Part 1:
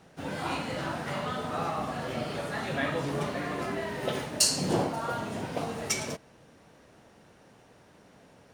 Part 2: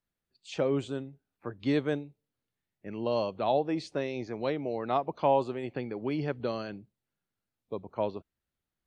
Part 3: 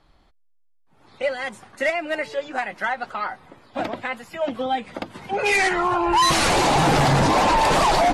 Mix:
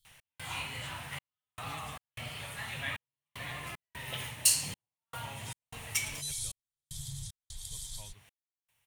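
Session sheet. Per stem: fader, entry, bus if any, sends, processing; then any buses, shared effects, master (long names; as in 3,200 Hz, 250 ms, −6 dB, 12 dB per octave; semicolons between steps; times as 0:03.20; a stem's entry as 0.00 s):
−2.5 dB, 0.05 s, no send, echo send −20.5 dB, octave-band graphic EQ 250/500/1,000/2,000/8,000 Hz +4/+8/+7/+9/−7 dB
−6.5 dB, 0.00 s, no send, no echo send, no processing
−17.0 dB, 0.00 s, no send, no echo send, brick-wall band-stop 180–3,100 Hz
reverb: not used
echo: single-tap delay 347 ms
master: drawn EQ curve 120 Hz 0 dB, 180 Hz −17 dB, 340 Hz −26 dB, 550 Hz −25 dB, 930 Hz −15 dB, 1,500 Hz −16 dB, 3,000 Hz +1 dB, 4,800 Hz −4 dB, 8,600 Hz +11 dB; gate pattern "x.xxxx..x" 76 BPM −60 dB; one half of a high-frequency compander encoder only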